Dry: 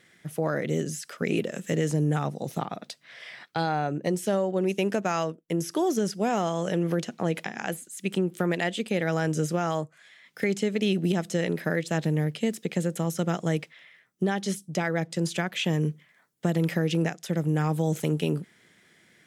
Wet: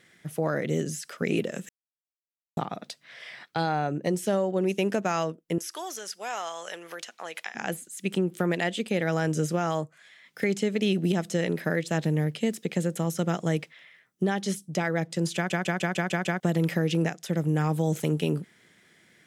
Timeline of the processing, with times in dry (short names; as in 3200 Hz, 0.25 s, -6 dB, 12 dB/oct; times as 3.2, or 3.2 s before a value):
1.69–2.57 mute
5.58–7.55 HPF 1000 Hz
15.35 stutter in place 0.15 s, 7 plays